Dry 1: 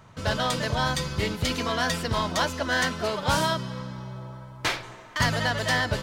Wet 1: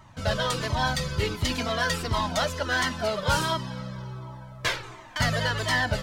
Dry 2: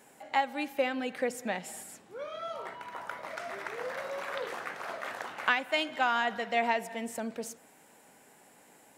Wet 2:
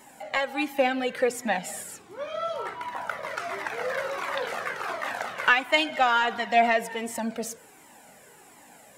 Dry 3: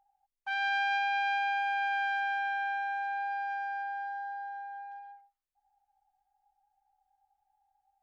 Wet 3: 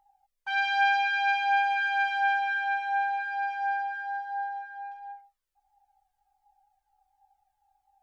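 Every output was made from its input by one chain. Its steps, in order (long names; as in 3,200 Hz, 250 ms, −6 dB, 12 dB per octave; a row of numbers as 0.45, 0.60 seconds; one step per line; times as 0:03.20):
in parallel at −7 dB: soft clipping −19.5 dBFS
on the sum: flanger whose copies keep moving one way falling 1.4 Hz
loudness normalisation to −27 LKFS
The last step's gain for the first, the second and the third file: +1.0, +8.0, +6.0 decibels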